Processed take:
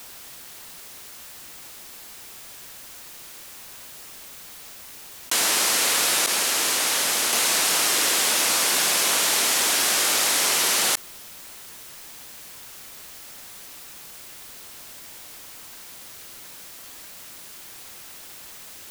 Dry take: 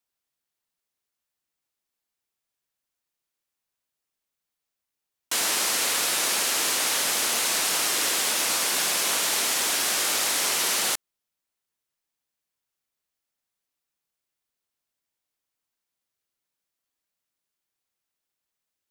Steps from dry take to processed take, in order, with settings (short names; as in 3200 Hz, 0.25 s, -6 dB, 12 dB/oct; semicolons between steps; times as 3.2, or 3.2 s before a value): 6.26–7.33 expander -19 dBFS; fast leveller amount 70%; gain +3 dB